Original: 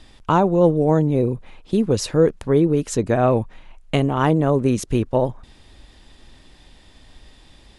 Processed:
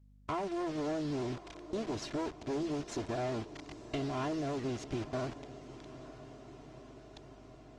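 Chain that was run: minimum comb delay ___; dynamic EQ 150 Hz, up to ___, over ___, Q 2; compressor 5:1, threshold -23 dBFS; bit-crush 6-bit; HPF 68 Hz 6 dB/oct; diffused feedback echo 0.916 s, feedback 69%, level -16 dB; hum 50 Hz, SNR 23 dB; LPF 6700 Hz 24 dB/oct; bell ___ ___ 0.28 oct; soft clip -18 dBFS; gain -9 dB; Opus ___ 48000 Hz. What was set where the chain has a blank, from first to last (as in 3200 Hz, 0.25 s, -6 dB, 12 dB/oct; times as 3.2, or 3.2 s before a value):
2.9 ms, +6 dB, -39 dBFS, 640 Hz, +2.5 dB, 24 kbps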